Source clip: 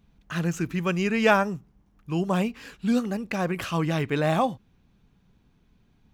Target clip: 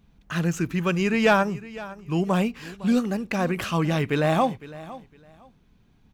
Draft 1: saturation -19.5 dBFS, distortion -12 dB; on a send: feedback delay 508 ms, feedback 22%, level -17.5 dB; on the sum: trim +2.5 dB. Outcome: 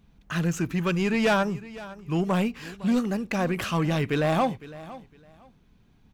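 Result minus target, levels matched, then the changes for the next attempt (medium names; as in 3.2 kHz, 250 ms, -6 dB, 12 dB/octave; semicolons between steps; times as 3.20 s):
saturation: distortion +9 dB
change: saturation -11.5 dBFS, distortion -21 dB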